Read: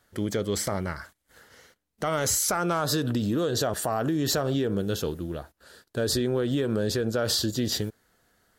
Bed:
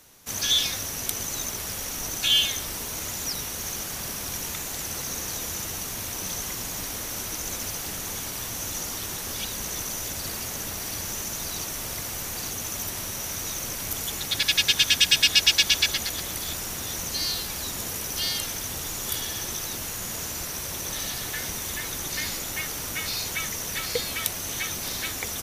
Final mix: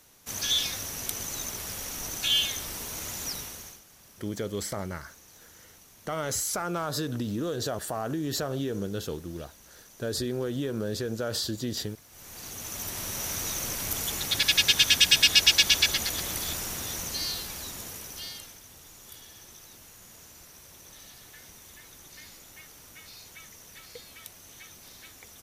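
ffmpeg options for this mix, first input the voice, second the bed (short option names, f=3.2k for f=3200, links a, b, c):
-filter_complex "[0:a]adelay=4050,volume=-5dB[a];[1:a]volume=17.5dB,afade=t=out:st=3.3:d=0.51:silence=0.125893,afade=t=in:st=12.09:d=1.16:silence=0.0841395,afade=t=out:st=16.38:d=2.22:silence=0.133352[b];[a][b]amix=inputs=2:normalize=0"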